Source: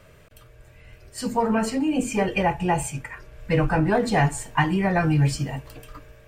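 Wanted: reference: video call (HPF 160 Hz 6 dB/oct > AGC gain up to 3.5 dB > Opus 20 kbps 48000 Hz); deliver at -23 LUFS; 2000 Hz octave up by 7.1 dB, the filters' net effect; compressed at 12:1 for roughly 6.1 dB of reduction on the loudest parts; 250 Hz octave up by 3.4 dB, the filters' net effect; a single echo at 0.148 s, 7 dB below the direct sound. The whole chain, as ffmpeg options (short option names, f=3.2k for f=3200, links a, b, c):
-af "equalizer=f=250:t=o:g=7,equalizer=f=2k:t=o:g=8.5,acompressor=threshold=-18dB:ratio=12,highpass=f=160:p=1,aecho=1:1:148:0.447,dynaudnorm=m=3.5dB,volume=2dB" -ar 48000 -c:a libopus -b:a 20k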